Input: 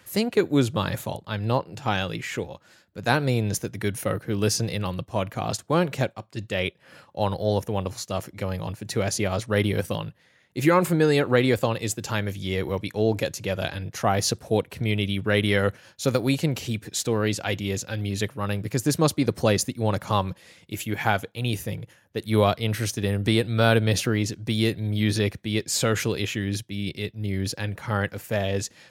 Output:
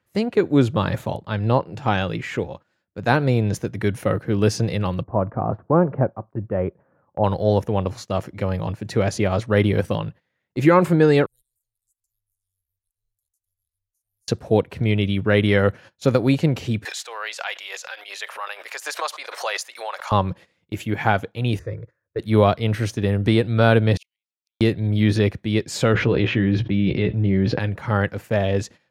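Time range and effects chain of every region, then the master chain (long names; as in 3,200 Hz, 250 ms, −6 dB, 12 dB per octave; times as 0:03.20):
0:05.03–0:07.24: low-pass filter 1,300 Hz 24 dB per octave + upward compression, threshold −42 dBFS
0:11.26–0:14.28: inverse Chebyshev band-stop filter 140–2,500 Hz, stop band 70 dB + downward compressor 2 to 1, threshold −48 dBFS
0:16.85–0:20.12: Bessel high-pass filter 1,100 Hz, order 6 + background raised ahead of every attack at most 59 dB per second
0:21.59–0:22.19: high-frequency loss of the air 130 metres + phaser with its sweep stopped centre 810 Hz, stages 6
0:23.97–0:24.61: Butterworth high-pass 2,200 Hz 96 dB per octave + compressor whose output falls as the input rises −36 dBFS, ratio −0.5 + gate with flip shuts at −32 dBFS, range −41 dB
0:25.94–0:27.59: high-frequency loss of the air 290 metres + double-tracking delay 16 ms −7.5 dB + envelope flattener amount 70%
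whole clip: low-pass filter 1,900 Hz 6 dB per octave; noise gate −44 dBFS, range −18 dB; automatic gain control gain up to 3.5 dB; level +2 dB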